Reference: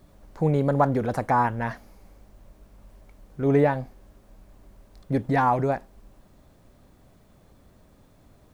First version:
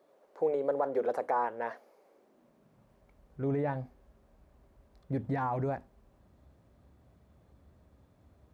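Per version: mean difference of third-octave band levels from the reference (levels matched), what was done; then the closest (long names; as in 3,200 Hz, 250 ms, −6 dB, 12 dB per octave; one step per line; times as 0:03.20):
4.0 dB: high-shelf EQ 3,200 Hz −8.5 dB
mains-hum notches 50/100/150/200/250/300 Hz
brickwall limiter −17 dBFS, peak gain reduction 8.5 dB
high-pass filter sweep 460 Hz → 66 Hz, 0:02.07–0:03.13
level −7.5 dB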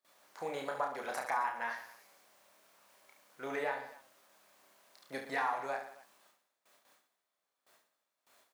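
11.5 dB: noise gate with hold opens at −44 dBFS
Bessel high-pass filter 1,300 Hz, order 2
downward compressor 2.5 to 1, threshold −36 dBFS, peak gain reduction 9.5 dB
on a send: reverse bouncing-ball delay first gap 30 ms, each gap 1.3×, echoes 5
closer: first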